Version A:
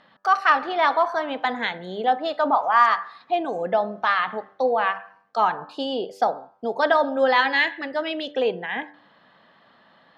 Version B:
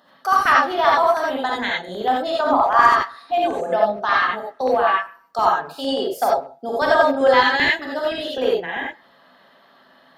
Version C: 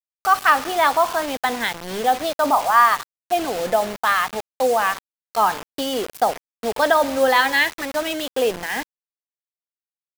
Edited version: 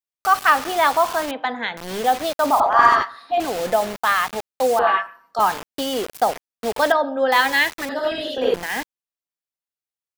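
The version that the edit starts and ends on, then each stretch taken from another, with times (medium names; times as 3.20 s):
C
1.31–1.77 s: from A
2.60–3.40 s: from B
4.79–5.40 s: from B
6.92–7.32 s: from A
7.89–8.54 s: from B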